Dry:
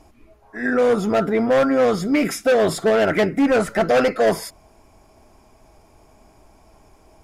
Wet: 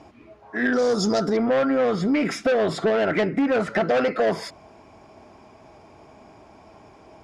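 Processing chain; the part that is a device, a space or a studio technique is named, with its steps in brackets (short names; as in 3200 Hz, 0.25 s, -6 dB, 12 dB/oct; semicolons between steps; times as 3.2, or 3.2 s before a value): AM radio (BPF 110–4300 Hz; compressor 6:1, threshold -23 dBFS, peak gain reduction 9.5 dB; soft clip -18.5 dBFS, distortion -22 dB); 0.73–1.37 resonant high shelf 3700 Hz +13 dB, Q 3; gain +5.5 dB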